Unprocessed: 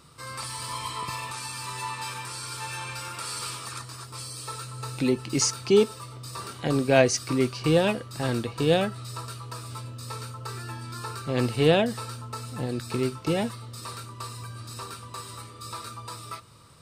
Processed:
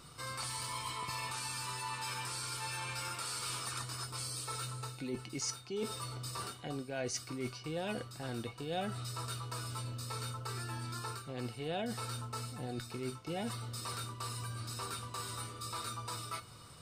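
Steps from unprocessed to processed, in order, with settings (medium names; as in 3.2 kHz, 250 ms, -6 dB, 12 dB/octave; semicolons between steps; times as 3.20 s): reverse; compression 6:1, threshold -36 dBFS, peak gain reduction 21 dB; reverse; feedback comb 730 Hz, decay 0.17 s, harmonics all, mix 80%; trim +11.5 dB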